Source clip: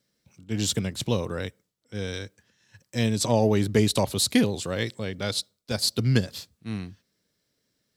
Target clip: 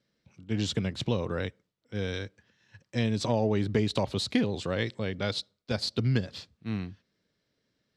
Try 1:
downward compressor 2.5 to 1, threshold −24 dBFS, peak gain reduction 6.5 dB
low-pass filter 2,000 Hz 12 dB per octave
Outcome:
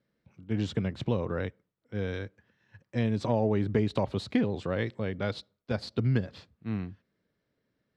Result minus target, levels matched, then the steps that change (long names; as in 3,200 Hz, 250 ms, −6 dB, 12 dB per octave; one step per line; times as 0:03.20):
4,000 Hz band −8.5 dB
change: low-pass filter 4,000 Hz 12 dB per octave